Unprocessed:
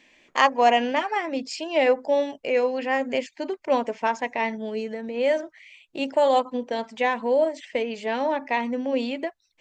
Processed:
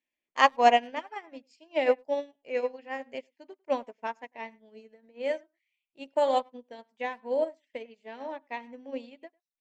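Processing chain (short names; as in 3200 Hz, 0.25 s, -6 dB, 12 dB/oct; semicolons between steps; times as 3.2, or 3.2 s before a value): speakerphone echo 0.1 s, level -13 dB; upward expander 2.5:1, over -36 dBFS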